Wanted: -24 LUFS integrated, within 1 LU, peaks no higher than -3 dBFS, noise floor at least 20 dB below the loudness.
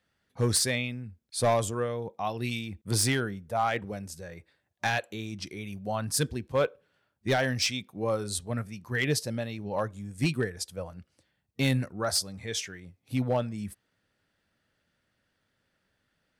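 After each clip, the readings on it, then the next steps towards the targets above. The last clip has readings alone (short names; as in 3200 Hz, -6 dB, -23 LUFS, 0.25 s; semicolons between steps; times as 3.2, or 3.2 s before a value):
clipped 0.3%; flat tops at -18.5 dBFS; loudness -30.0 LUFS; peak -18.5 dBFS; loudness target -24.0 LUFS
-> clip repair -18.5 dBFS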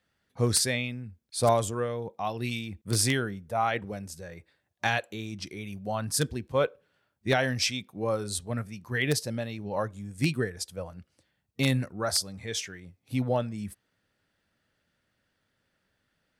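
clipped 0.0%; loudness -29.5 LUFS; peak -9.5 dBFS; loudness target -24.0 LUFS
-> gain +5.5 dB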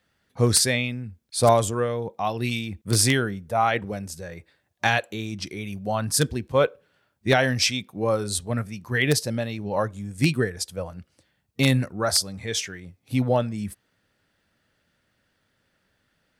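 loudness -24.0 LUFS; peak -4.0 dBFS; noise floor -71 dBFS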